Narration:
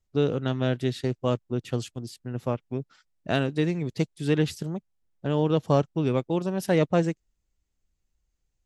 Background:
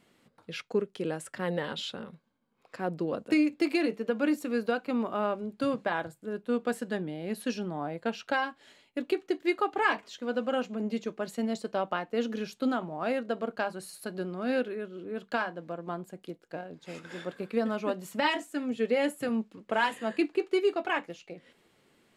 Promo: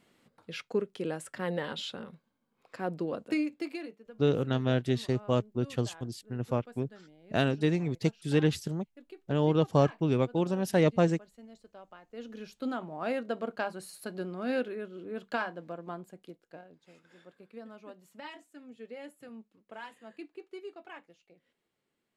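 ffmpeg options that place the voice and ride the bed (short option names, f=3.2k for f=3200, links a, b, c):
-filter_complex "[0:a]adelay=4050,volume=-2dB[a];[1:a]volume=17dB,afade=t=out:st=3:d=0.99:silence=0.112202,afade=t=in:st=12.01:d=1.09:silence=0.11885,afade=t=out:st=15.55:d=1.42:silence=0.16788[b];[a][b]amix=inputs=2:normalize=0"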